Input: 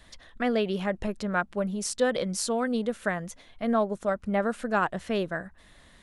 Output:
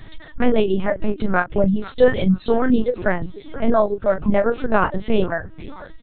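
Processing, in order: in parallel at -2.5 dB: compressor, threshold -34 dBFS, peak gain reduction 14 dB; on the sum: low shelf 380 Hz +9.5 dB; on a send: frequency-shifting echo 0.48 s, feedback 58%, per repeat -80 Hz, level -16 dB; on the sum: reverb removal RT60 1.5 s; doubler 32 ms -8.5 dB; LPC vocoder at 8 kHz pitch kept; gain +5 dB

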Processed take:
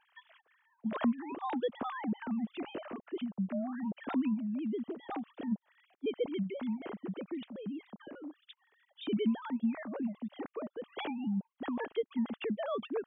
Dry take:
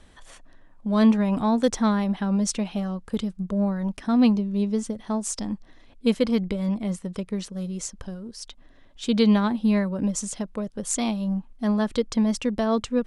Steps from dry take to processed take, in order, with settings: sine-wave speech; dynamic EQ 310 Hz, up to -4 dB, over -30 dBFS, Q 1.8; compressor 2:1, threshold -32 dBFS, peak gain reduction 12 dB; gain -3.5 dB

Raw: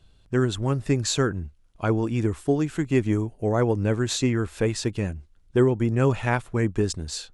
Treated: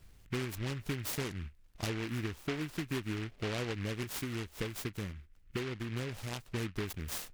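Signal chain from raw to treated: compressor 5:1, threshold -33 dBFS, peak gain reduction 16.5 dB; 4.03–6.46 rotary speaker horn 5 Hz; noise-modulated delay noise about 1900 Hz, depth 0.21 ms; gain -1.5 dB

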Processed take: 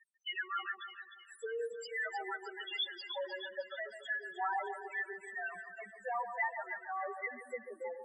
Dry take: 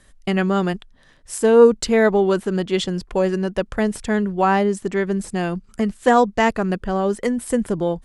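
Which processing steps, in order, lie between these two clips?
compressor 16:1, threshold -22 dBFS, peak gain reduction 17 dB; HPF 730 Hz 12 dB/oct; tilt +4 dB/oct; loudest bins only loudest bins 2; LPF 4400 Hz 24 dB/oct; split-band echo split 1800 Hz, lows 0.142 s, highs 0.307 s, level -8 dB; gain +1 dB

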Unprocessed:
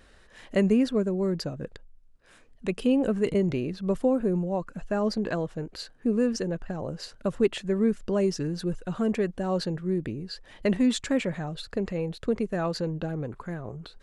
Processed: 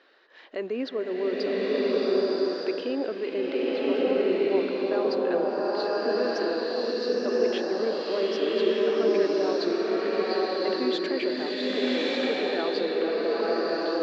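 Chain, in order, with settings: elliptic band-pass 320–4500 Hz, stop band 40 dB; limiter -22 dBFS, peak gain reduction 9 dB; bloom reverb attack 1.18 s, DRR -7 dB

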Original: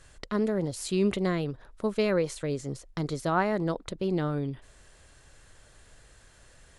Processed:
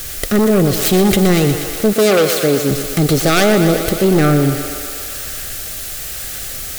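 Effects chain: tracing distortion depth 0.43 ms; rotary speaker horn 6.7 Hz, later 1 Hz, at 0.64; added noise white -54 dBFS; in parallel at -4 dB: sine folder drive 12 dB, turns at -13.5 dBFS; on the sum: Butterworth band-stop 970 Hz, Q 3.5; high shelf 4900 Hz +5.5 dB; on a send: thinning echo 0.121 s, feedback 78%, high-pass 290 Hz, level -9 dB; on the sum: soft clip -11.5 dBFS, distortion -22 dB; 1.93–2.71 HPF 170 Hz 12 dB/oct; gain +8 dB

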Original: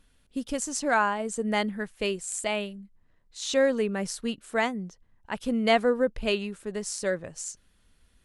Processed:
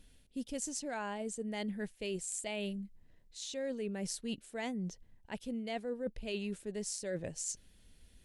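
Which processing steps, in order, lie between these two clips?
bell 1200 Hz -12 dB 0.9 oct; reverse; compressor 10:1, threshold -38 dBFS, peak gain reduction 19 dB; reverse; gain +2.5 dB

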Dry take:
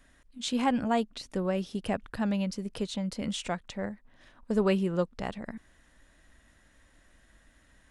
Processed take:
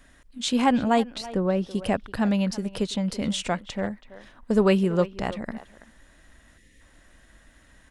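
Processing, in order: 1.26–1.71 high shelf 2600 Hz -12 dB; 6.58–6.81 spectral delete 550–1700 Hz; speakerphone echo 0.33 s, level -15 dB; gain +6 dB

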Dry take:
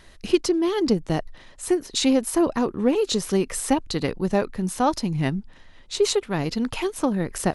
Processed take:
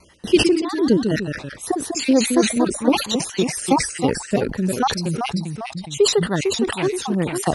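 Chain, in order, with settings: random spectral dropouts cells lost 49%; HPF 75 Hz 12 dB/oct; gate with hold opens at -46 dBFS; echoes that change speed 95 ms, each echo -1 st, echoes 2, each echo -6 dB; sustainer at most 110 dB/s; gain +4 dB

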